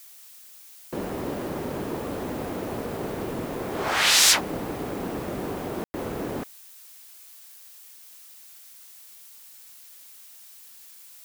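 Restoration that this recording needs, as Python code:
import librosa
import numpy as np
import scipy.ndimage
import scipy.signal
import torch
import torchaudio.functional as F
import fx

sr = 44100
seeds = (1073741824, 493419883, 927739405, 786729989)

y = fx.fix_ambience(x, sr, seeds[0], print_start_s=8.34, print_end_s=8.84, start_s=5.84, end_s=5.94)
y = fx.noise_reduce(y, sr, print_start_s=8.34, print_end_s=8.84, reduce_db=30.0)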